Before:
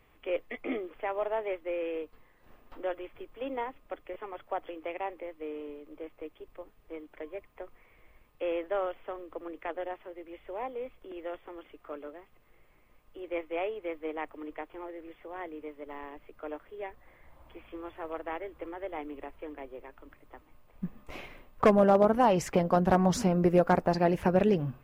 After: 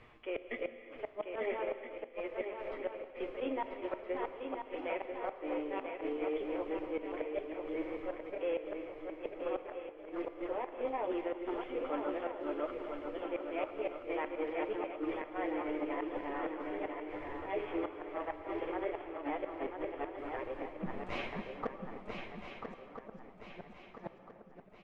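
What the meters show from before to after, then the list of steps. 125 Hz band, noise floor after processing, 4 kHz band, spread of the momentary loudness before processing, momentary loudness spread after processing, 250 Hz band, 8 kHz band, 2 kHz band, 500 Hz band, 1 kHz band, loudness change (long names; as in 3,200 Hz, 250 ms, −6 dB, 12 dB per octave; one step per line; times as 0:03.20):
−20.0 dB, −56 dBFS, −5.5 dB, 21 LU, 9 LU, −7.5 dB, can't be measured, −3.5 dB, −6.5 dB, −8.0 dB, −8.5 dB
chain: delay that plays each chunk backwards 491 ms, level −1.5 dB
reversed playback
downward compressor 5 to 1, threshold −40 dBFS, peak gain reduction 21 dB
reversed playback
flanger 0.14 Hz, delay 8.4 ms, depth 3.2 ms, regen −15%
low-shelf EQ 90 Hz −5.5 dB
far-end echo of a speakerphone 230 ms, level −15 dB
gate with flip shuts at −36 dBFS, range −40 dB
low-pass filter 4,300 Hz 12 dB per octave
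on a send: feedback echo with a long and a short gap by turns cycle 1,321 ms, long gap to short 3 to 1, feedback 41%, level −6 dB
on the sum: reverb whose tail is shaped and stops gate 380 ms flat, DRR 9.5 dB
level +10 dB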